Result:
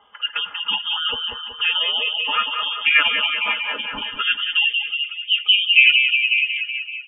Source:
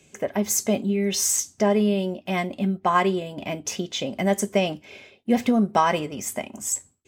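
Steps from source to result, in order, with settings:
repeating echo 189 ms, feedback 57%, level −7 dB
phase-vocoder pitch shift with formants kept −3.5 semitones
low-shelf EQ 280 Hz −6.5 dB
comb filter 5.1 ms, depth 54%
on a send: echo through a band-pass that steps 182 ms, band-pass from 370 Hz, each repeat 0.7 octaves, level −2 dB
on the sum: low-pass filter sweep 2,300 Hz → 950 Hz, 0:03.79–0:05.64
parametric band 190 Hz −13 dB 0.26 octaves
gate on every frequency bin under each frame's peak −25 dB strong
voice inversion scrambler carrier 3,400 Hz
level +1.5 dB

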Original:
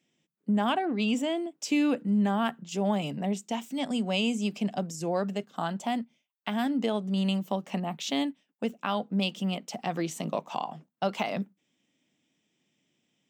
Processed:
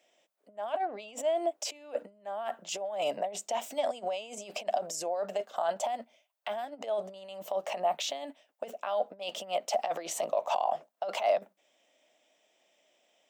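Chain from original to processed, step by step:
compressor whose output falls as the input rises −33 dBFS, ratio −0.5
brickwall limiter −25 dBFS, peak gain reduction 10.5 dB
high-pass with resonance 620 Hz, resonance Q 4.9

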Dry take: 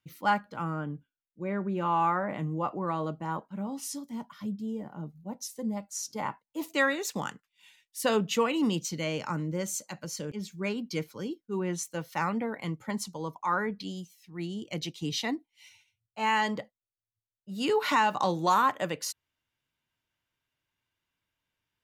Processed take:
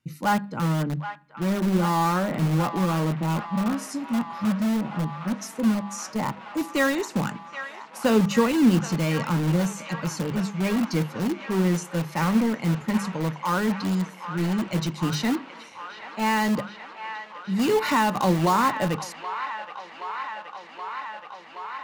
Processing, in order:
notch filter 3,300 Hz, Q 6.4
de-essing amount 80%
elliptic low-pass filter 12,000 Hz, stop band 40 dB
parametric band 160 Hz +11 dB 2 octaves
mains-hum notches 50/100/150/200 Hz
in parallel at −9.5 dB: wrap-around overflow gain 24.5 dB
on the sum: delay with a band-pass on its return 774 ms, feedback 83%, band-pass 1,600 Hz, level −9 dB
on a send at −20 dB: convolution reverb RT60 0.70 s, pre-delay 3 ms
on the sum: level +2.5 dB

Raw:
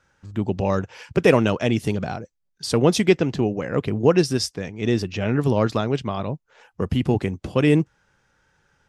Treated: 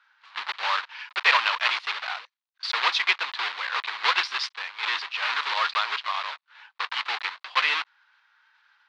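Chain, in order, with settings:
one scale factor per block 3 bits
Chebyshev band-pass filter 990–4,200 Hz, order 3
level +4.5 dB

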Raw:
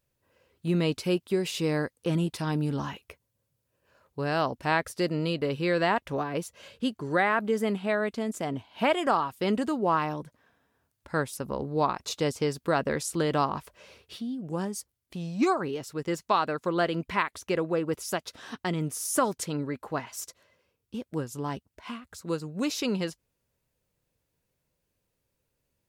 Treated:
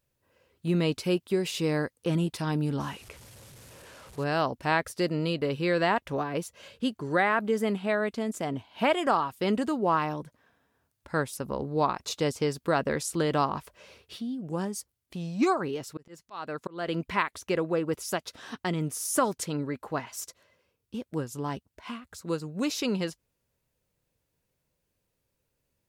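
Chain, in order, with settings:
0:02.80–0:04.24: linear delta modulator 64 kbit/s, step −43.5 dBFS
0:15.40–0:16.88: volume swells 376 ms

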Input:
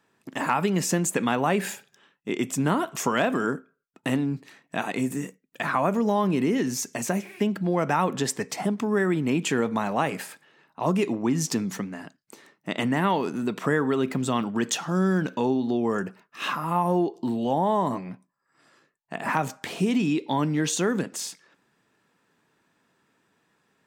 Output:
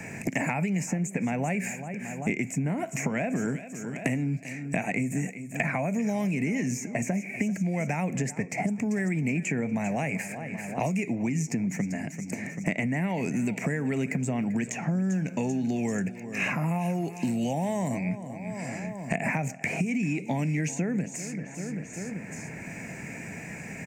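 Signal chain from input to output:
drawn EQ curve 170 Hz 0 dB, 250 Hz −5 dB, 370 Hz −12 dB, 690 Hz −5 dB, 1,200 Hz −24 dB, 2,300 Hz +4 dB, 3,400 Hz −29 dB, 6,900 Hz −2 dB, 10,000 Hz −13 dB
downward compressor, threshold −30 dBFS, peak gain reduction 8.5 dB
repeating echo 390 ms, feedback 40%, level −18 dB
multiband upward and downward compressor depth 100%
level +5.5 dB

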